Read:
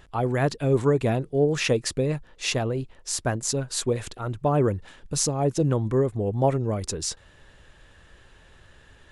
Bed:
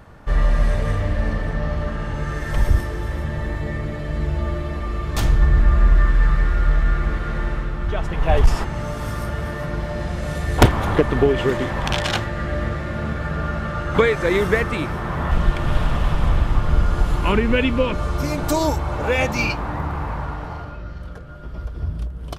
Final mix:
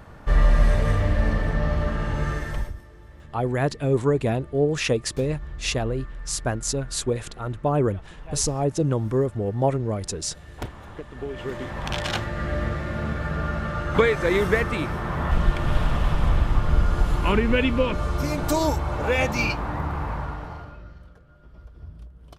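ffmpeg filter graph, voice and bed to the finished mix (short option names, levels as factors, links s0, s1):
-filter_complex "[0:a]adelay=3200,volume=1[s0];[1:a]volume=8.41,afade=t=out:st=2.27:d=0.46:silence=0.0891251,afade=t=in:st=11.13:d=1.35:silence=0.11885,afade=t=out:st=20.14:d=1:silence=0.223872[s1];[s0][s1]amix=inputs=2:normalize=0"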